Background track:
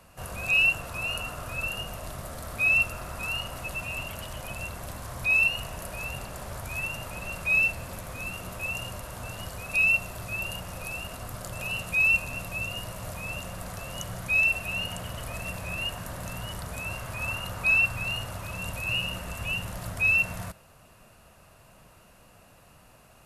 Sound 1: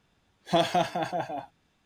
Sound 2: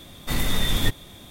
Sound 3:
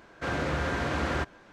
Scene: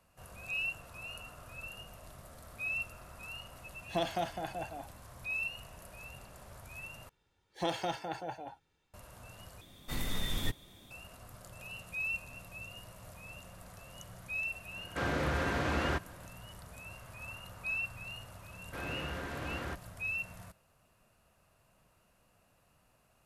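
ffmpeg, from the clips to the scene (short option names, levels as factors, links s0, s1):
-filter_complex "[1:a]asplit=2[s0][s1];[3:a]asplit=2[s2][s3];[0:a]volume=0.2[s4];[s1]aecho=1:1:2.2:0.5[s5];[s2]acontrast=52[s6];[s4]asplit=3[s7][s8][s9];[s7]atrim=end=7.094[s10];[s5]atrim=end=1.85,asetpts=PTS-STARTPTS,volume=0.376[s11];[s8]atrim=start=8.936:end=9.614[s12];[2:a]atrim=end=1.3,asetpts=PTS-STARTPTS,volume=0.251[s13];[s9]atrim=start=10.906[s14];[s0]atrim=end=1.85,asetpts=PTS-STARTPTS,volume=0.335,afade=t=in:d=0.004:c=hsin,afade=t=out:st=1.846:d=0.004:c=hsin,adelay=3420[s15];[s6]atrim=end=1.52,asetpts=PTS-STARTPTS,volume=0.355,afade=t=in:d=0.004:c=hsin,afade=t=out:st=1.516:d=0.004:c=hsin,adelay=14740[s16];[s3]atrim=end=1.52,asetpts=PTS-STARTPTS,volume=0.282,afade=t=in:d=0.004:c=hsin,afade=t=out:st=1.516:d=0.004:c=hsin,adelay=18510[s17];[s10][s11]acrossfade=d=0.004:c1=hsin:c2=hsin[s18];[s18][s12]acrossfade=d=0.004:c1=hsin:c2=hsin[s19];[s19][s13]acrossfade=d=0.004:c1=hsin:c2=hsin[s20];[s20][s14]acrossfade=d=0.004:c1=hsin:c2=hsin[s21];[s21][s15][s16][s17]amix=inputs=4:normalize=0"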